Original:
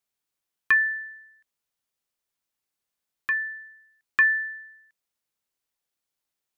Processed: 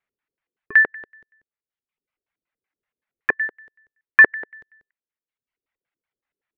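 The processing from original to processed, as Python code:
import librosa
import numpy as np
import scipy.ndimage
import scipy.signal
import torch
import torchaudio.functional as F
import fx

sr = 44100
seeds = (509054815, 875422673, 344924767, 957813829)

y = fx.filter_lfo_lowpass(x, sr, shape='square', hz=5.3, low_hz=430.0, high_hz=2000.0, q=2.4)
y = fx.dereverb_blind(y, sr, rt60_s=1.1)
y = fx.env_lowpass_down(y, sr, base_hz=2800.0, full_db=-21.5)
y = F.gain(torch.from_numpy(y), 3.0).numpy()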